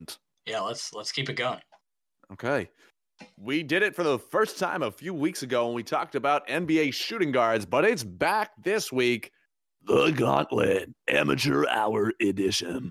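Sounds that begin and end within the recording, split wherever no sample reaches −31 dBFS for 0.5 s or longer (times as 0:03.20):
0:02.40–0:02.64
0:03.47–0:09.24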